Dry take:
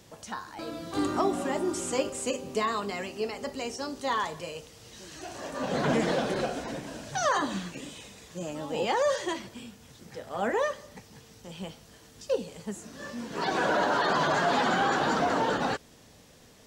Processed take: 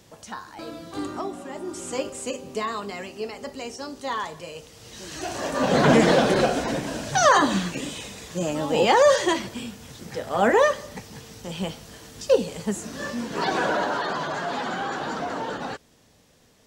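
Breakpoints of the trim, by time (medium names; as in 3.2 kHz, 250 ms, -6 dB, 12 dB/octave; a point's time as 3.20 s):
0.67 s +1 dB
1.45 s -7 dB
1.96 s 0 dB
4.46 s 0 dB
5.23 s +9.5 dB
12.98 s +9.5 dB
14.25 s -3.5 dB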